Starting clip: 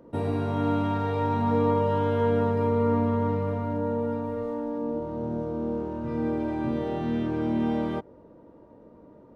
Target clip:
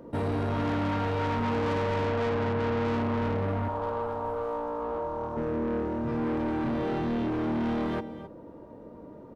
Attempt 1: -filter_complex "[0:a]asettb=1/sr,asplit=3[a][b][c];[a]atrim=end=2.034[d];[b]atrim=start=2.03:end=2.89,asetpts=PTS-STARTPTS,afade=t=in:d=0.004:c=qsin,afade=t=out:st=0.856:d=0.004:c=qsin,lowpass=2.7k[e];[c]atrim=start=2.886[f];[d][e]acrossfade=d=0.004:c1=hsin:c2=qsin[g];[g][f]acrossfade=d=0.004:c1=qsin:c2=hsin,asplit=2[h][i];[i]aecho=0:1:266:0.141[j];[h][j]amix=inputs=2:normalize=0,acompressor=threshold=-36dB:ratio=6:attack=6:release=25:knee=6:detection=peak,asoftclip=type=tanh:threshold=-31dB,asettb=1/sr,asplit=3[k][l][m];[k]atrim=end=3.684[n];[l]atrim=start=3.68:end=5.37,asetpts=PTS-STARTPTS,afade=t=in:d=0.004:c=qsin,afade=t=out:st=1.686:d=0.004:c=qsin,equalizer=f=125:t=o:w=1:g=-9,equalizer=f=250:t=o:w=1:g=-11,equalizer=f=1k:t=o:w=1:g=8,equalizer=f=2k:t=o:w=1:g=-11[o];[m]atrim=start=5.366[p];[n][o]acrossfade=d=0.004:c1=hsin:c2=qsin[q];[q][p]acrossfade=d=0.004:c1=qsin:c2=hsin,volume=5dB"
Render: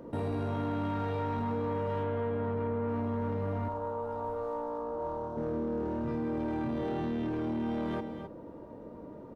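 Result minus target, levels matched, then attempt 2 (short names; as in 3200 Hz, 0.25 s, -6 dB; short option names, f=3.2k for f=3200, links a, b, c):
compressor: peak gain reduction +14 dB
-filter_complex "[0:a]asettb=1/sr,asplit=3[a][b][c];[a]atrim=end=2.034[d];[b]atrim=start=2.03:end=2.89,asetpts=PTS-STARTPTS,afade=t=in:d=0.004:c=qsin,afade=t=out:st=0.856:d=0.004:c=qsin,lowpass=2.7k[e];[c]atrim=start=2.886[f];[d][e]acrossfade=d=0.004:c1=hsin:c2=qsin[g];[g][f]acrossfade=d=0.004:c1=qsin:c2=hsin,asplit=2[h][i];[i]aecho=0:1:266:0.141[j];[h][j]amix=inputs=2:normalize=0,asoftclip=type=tanh:threshold=-31dB,asettb=1/sr,asplit=3[k][l][m];[k]atrim=end=3.684[n];[l]atrim=start=3.68:end=5.37,asetpts=PTS-STARTPTS,afade=t=in:d=0.004:c=qsin,afade=t=out:st=1.686:d=0.004:c=qsin,equalizer=f=125:t=o:w=1:g=-9,equalizer=f=250:t=o:w=1:g=-11,equalizer=f=1k:t=o:w=1:g=8,equalizer=f=2k:t=o:w=1:g=-11[o];[m]atrim=start=5.366[p];[n][o]acrossfade=d=0.004:c1=hsin:c2=qsin[q];[q][p]acrossfade=d=0.004:c1=qsin:c2=hsin,volume=5dB"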